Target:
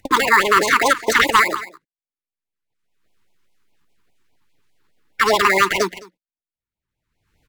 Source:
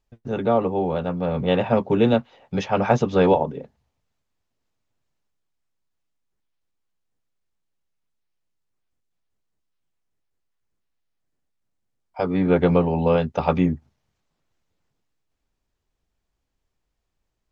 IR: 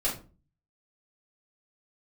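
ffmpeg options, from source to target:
-filter_complex "[0:a]acrossover=split=100|500[link_01][link_02][link_03];[link_01]acompressor=threshold=-47dB:ratio=4[link_04];[link_02]acompressor=threshold=-31dB:ratio=4[link_05];[link_03]acompressor=threshold=-22dB:ratio=4[link_06];[link_04][link_05][link_06]amix=inputs=3:normalize=0,agate=range=-53dB:threshold=-57dB:ratio=16:detection=peak,aecho=1:1:494:0.075,asetrate=103194,aresample=44100,equalizer=frequency=1800:width_type=o:width=2.4:gain=9.5,asplit=2[link_07][link_08];[link_08]acrusher=samples=15:mix=1:aa=0.000001,volume=-10dB[link_09];[link_07][link_09]amix=inputs=2:normalize=0,acompressor=mode=upward:threshold=-31dB:ratio=2.5,alimiter=level_in=11dB:limit=-1dB:release=50:level=0:latency=1,afftfilt=real='re*(1-between(b*sr/1024,570*pow(1500/570,0.5+0.5*sin(2*PI*4.9*pts/sr))/1.41,570*pow(1500/570,0.5+0.5*sin(2*PI*4.9*pts/sr))*1.41))':imag='im*(1-between(b*sr/1024,570*pow(1500/570,0.5+0.5*sin(2*PI*4.9*pts/sr))/1.41,570*pow(1500/570,0.5+0.5*sin(2*PI*4.9*pts/sr))*1.41))':win_size=1024:overlap=0.75,volume=-1dB"

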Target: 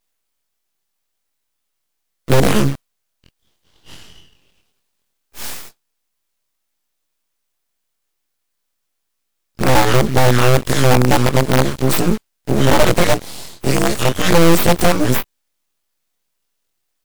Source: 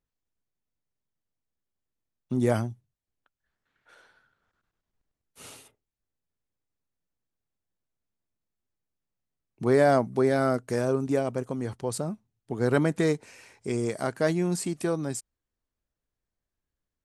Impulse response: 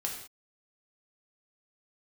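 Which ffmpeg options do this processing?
-filter_complex "[0:a]afftfilt=real='re':imag='-im':win_size=2048:overlap=0.75,afftfilt=real='re*(1-between(b*sr/4096,460,1000))':imag='im*(1-between(b*sr/4096,460,1000))':win_size=4096:overlap=0.75,acrossover=split=370[link_01][link_02];[link_02]acompressor=threshold=-36dB:ratio=6[link_03];[link_01][link_03]amix=inputs=2:normalize=0,acrossover=split=740|1700[link_04][link_05][link_06];[link_04]acrusher=bits=6:dc=4:mix=0:aa=0.000001[link_07];[link_07][link_05][link_06]amix=inputs=3:normalize=0,aeval=exprs='abs(val(0))':channel_layout=same,alimiter=level_in=27.5dB:limit=-1dB:release=50:level=0:latency=1,volume=-1dB"

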